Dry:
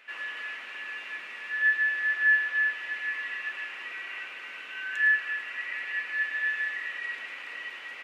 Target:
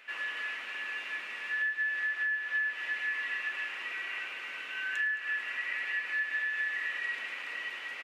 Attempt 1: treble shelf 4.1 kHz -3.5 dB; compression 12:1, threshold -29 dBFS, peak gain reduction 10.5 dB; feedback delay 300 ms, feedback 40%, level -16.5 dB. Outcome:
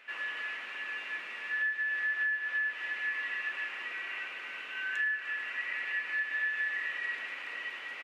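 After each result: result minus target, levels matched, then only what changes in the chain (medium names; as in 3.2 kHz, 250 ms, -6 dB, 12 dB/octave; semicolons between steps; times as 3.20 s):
echo 83 ms late; 8 kHz band -4.0 dB
change: feedback delay 217 ms, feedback 40%, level -16.5 dB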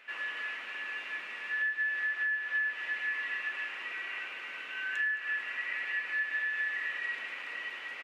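8 kHz band -4.0 dB
change: treble shelf 4.1 kHz +2.5 dB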